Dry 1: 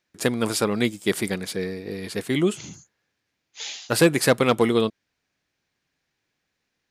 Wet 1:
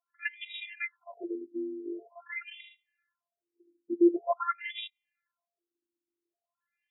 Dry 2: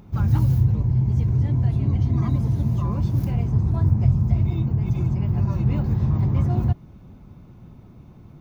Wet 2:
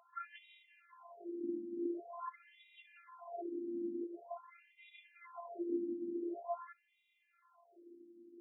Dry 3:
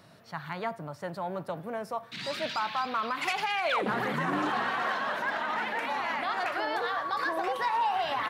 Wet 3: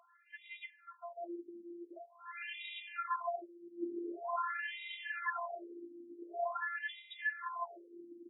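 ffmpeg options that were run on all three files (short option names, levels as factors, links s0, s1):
-af "highpass=190,afftfilt=real='hypot(re,im)*cos(PI*b)':imag='0':win_size=512:overlap=0.75,afftfilt=real='re*between(b*sr/1024,260*pow(2800/260,0.5+0.5*sin(2*PI*0.46*pts/sr))/1.41,260*pow(2800/260,0.5+0.5*sin(2*PI*0.46*pts/sr))*1.41)':imag='im*between(b*sr/1024,260*pow(2800/260,0.5+0.5*sin(2*PI*0.46*pts/sr))/1.41,260*pow(2800/260,0.5+0.5*sin(2*PI*0.46*pts/sr))*1.41)':win_size=1024:overlap=0.75"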